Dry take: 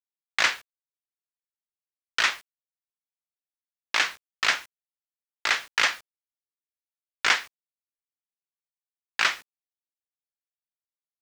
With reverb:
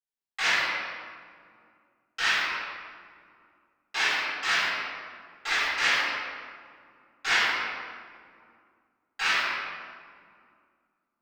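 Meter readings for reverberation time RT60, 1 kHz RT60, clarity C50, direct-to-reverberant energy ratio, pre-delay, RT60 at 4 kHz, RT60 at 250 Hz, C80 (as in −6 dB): 2.2 s, 2.1 s, −4.5 dB, −17.5 dB, 3 ms, 1.2 s, 3.0 s, −1.5 dB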